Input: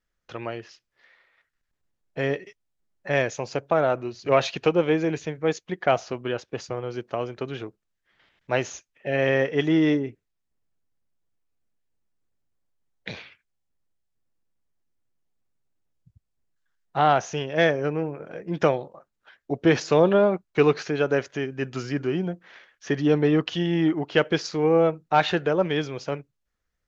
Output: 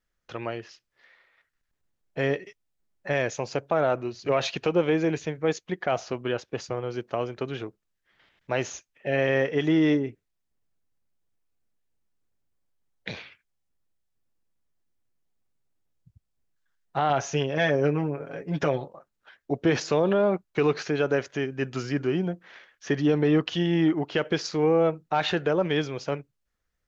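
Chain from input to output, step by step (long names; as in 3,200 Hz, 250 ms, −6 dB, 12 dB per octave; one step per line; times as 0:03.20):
0:17.09–0:18.85: comb filter 7.2 ms, depth 72%
brickwall limiter −13.5 dBFS, peak gain reduction 8.5 dB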